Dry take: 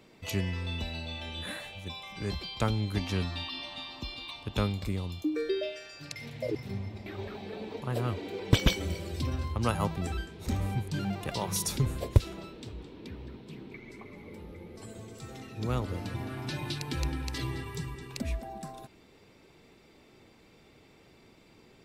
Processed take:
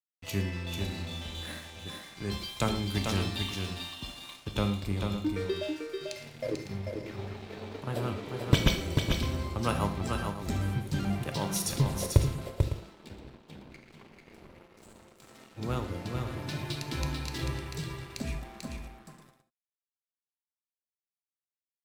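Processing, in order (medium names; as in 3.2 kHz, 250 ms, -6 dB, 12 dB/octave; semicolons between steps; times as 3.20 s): 2.31–3.50 s: treble shelf 3.5 kHz +8 dB; 14.64–15.55 s: high-pass 180 Hz 12 dB/octave; crossover distortion -45 dBFS; multi-tap echo 113/442/555 ms -17/-5/-13 dB; gated-style reverb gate 100 ms flat, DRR 7.5 dB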